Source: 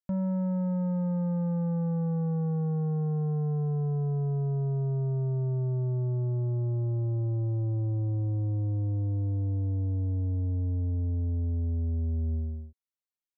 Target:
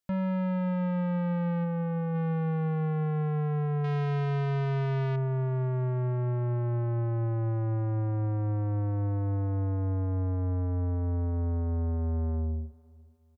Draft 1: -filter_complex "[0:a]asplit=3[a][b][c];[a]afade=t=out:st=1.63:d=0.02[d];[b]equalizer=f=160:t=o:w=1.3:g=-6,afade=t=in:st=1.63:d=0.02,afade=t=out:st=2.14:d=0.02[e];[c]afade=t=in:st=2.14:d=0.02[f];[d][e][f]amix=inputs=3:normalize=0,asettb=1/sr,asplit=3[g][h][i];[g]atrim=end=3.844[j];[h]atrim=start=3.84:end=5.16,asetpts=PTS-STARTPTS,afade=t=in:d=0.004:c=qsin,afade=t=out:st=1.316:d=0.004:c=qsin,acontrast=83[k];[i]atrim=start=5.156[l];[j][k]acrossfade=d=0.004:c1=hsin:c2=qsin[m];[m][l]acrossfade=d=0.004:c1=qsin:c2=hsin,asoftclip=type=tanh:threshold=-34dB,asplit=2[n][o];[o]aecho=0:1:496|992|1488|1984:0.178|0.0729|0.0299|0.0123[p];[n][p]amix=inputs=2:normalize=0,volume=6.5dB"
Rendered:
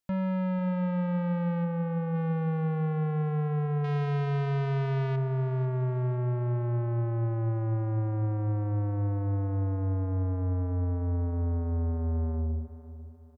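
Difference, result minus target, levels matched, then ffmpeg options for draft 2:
echo-to-direct +11 dB
-filter_complex "[0:a]asplit=3[a][b][c];[a]afade=t=out:st=1.63:d=0.02[d];[b]equalizer=f=160:t=o:w=1.3:g=-6,afade=t=in:st=1.63:d=0.02,afade=t=out:st=2.14:d=0.02[e];[c]afade=t=in:st=2.14:d=0.02[f];[d][e][f]amix=inputs=3:normalize=0,asettb=1/sr,asplit=3[g][h][i];[g]atrim=end=3.844[j];[h]atrim=start=3.84:end=5.16,asetpts=PTS-STARTPTS,afade=t=in:d=0.004:c=qsin,afade=t=out:st=1.316:d=0.004:c=qsin,acontrast=83[k];[i]atrim=start=5.156[l];[j][k]acrossfade=d=0.004:c1=hsin:c2=qsin[m];[m][l]acrossfade=d=0.004:c1=qsin:c2=hsin,asoftclip=type=tanh:threshold=-34dB,asplit=2[n][o];[o]aecho=0:1:496|992:0.0501|0.0205[p];[n][p]amix=inputs=2:normalize=0,volume=6.5dB"

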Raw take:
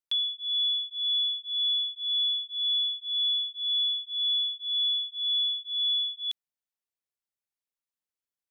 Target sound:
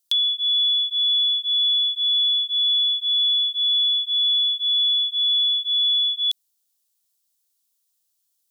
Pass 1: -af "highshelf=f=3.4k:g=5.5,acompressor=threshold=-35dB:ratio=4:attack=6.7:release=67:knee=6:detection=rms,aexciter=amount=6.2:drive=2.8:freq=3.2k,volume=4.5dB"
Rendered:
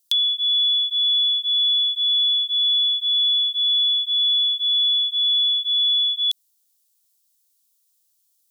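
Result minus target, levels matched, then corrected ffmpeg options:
8000 Hz band +3.0 dB
-af "acompressor=threshold=-35dB:ratio=4:attack=6.7:release=67:knee=6:detection=rms,aexciter=amount=6.2:drive=2.8:freq=3.2k,volume=4.5dB"

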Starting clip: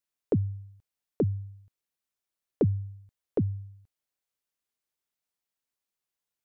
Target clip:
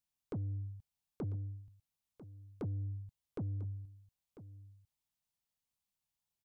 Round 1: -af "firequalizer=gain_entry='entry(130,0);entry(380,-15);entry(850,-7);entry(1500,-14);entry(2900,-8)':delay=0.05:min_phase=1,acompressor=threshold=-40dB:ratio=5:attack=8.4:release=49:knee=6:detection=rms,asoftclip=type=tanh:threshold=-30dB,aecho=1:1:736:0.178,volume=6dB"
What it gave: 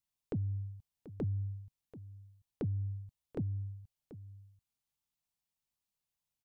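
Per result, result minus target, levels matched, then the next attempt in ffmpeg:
soft clip: distortion -14 dB; echo 0.26 s early
-af "firequalizer=gain_entry='entry(130,0);entry(380,-15);entry(850,-7);entry(1500,-14);entry(2900,-8)':delay=0.05:min_phase=1,acompressor=threshold=-40dB:ratio=5:attack=8.4:release=49:knee=6:detection=rms,asoftclip=type=tanh:threshold=-40.5dB,aecho=1:1:736:0.178,volume=6dB"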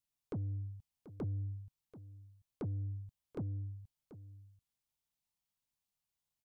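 echo 0.26 s early
-af "firequalizer=gain_entry='entry(130,0);entry(380,-15);entry(850,-7);entry(1500,-14);entry(2900,-8)':delay=0.05:min_phase=1,acompressor=threshold=-40dB:ratio=5:attack=8.4:release=49:knee=6:detection=rms,asoftclip=type=tanh:threshold=-40.5dB,aecho=1:1:996:0.178,volume=6dB"

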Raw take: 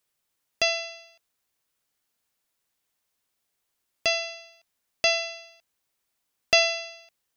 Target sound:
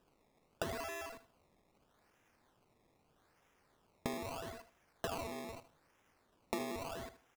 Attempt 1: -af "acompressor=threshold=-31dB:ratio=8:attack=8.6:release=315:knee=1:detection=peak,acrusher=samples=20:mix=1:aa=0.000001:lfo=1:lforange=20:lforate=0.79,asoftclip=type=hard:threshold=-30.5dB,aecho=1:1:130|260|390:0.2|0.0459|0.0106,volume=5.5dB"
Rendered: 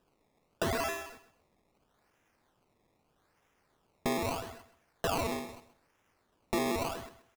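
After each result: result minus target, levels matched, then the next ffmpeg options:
echo 52 ms late; compressor: peak gain reduction -10.5 dB
-af "acompressor=threshold=-31dB:ratio=8:attack=8.6:release=315:knee=1:detection=peak,acrusher=samples=20:mix=1:aa=0.000001:lfo=1:lforange=20:lforate=0.79,asoftclip=type=hard:threshold=-30.5dB,aecho=1:1:78|156|234:0.2|0.0459|0.0106,volume=5.5dB"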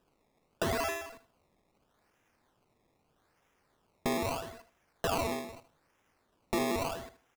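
compressor: peak gain reduction -10.5 dB
-af "acompressor=threshold=-43dB:ratio=8:attack=8.6:release=315:knee=1:detection=peak,acrusher=samples=20:mix=1:aa=0.000001:lfo=1:lforange=20:lforate=0.79,asoftclip=type=hard:threshold=-30.5dB,aecho=1:1:78|156|234:0.2|0.0459|0.0106,volume=5.5dB"

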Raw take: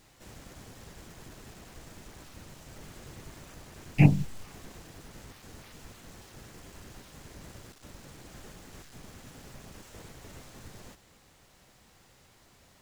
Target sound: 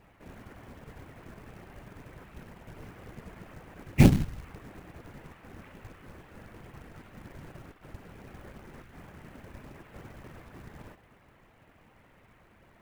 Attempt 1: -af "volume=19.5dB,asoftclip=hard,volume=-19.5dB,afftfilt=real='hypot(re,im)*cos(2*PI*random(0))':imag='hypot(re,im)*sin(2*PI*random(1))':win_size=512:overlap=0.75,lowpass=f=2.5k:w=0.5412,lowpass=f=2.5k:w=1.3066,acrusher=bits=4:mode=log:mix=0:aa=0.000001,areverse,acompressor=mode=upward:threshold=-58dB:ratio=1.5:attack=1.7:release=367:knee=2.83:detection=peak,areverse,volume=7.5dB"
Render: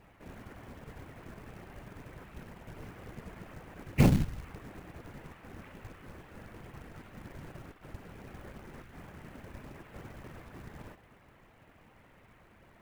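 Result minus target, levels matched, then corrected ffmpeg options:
overloaded stage: distortion +9 dB
-af "volume=12dB,asoftclip=hard,volume=-12dB,afftfilt=real='hypot(re,im)*cos(2*PI*random(0))':imag='hypot(re,im)*sin(2*PI*random(1))':win_size=512:overlap=0.75,lowpass=f=2.5k:w=0.5412,lowpass=f=2.5k:w=1.3066,acrusher=bits=4:mode=log:mix=0:aa=0.000001,areverse,acompressor=mode=upward:threshold=-58dB:ratio=1.5:attack=1.7:release=367:knee=2.83:detection=peak,areverse,volume=7.5dB"

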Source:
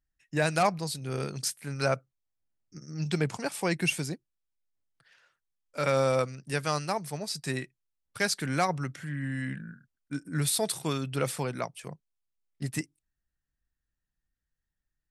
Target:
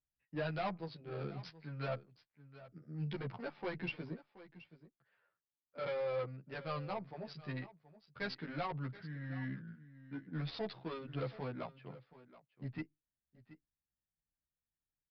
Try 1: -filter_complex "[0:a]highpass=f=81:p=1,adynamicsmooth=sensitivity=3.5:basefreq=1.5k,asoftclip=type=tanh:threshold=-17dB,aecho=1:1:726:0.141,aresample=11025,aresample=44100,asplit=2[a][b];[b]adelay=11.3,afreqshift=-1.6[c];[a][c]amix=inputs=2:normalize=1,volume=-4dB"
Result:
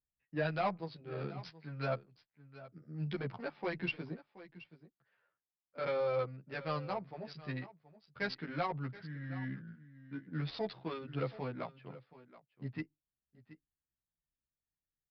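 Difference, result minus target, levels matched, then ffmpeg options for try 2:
soft clip: distortion -10 dB
-filter_complex "[0:a]highpass=f=81:p=1,adynamicsmooth=sensitivity=3.5:basefreq=1.5k,asoftclip=type=tanh:threshold=-26.5dB,aecho=1:1:726:0.141,aresample=11025,aresample=44100,asplit=2[a][b];[b]adelay=11.3,afreqshift=-1.6[c];[a][c]amix=inputs=2:normalize=1,volume=-4dB"

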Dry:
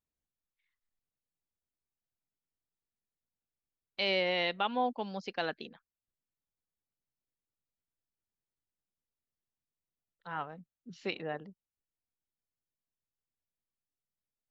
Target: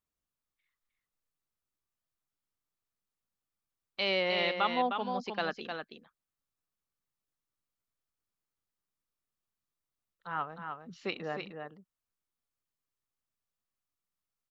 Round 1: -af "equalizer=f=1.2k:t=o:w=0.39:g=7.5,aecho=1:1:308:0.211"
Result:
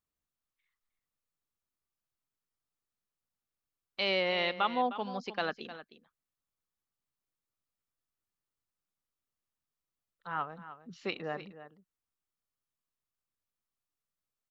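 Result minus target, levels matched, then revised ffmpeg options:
echo-to-direct -7.5 dB
-af "equalizer=f=1.2k:t=o:w=0.39:g=7.5,aecho=1:1:308:0.501"

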